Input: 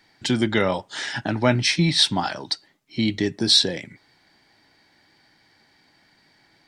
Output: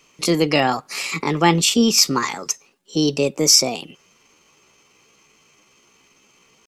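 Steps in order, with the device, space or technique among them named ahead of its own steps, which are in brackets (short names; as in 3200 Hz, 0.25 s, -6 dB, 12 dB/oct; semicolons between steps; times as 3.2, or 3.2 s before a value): chipmunk voice (pitch shift +5.5 st); gain +3.5 dB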